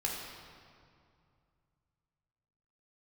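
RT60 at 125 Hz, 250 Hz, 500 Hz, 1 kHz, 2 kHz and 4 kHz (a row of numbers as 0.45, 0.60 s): 3.5, 2.7, 2.4, 2.4, 1.9, 1.6 s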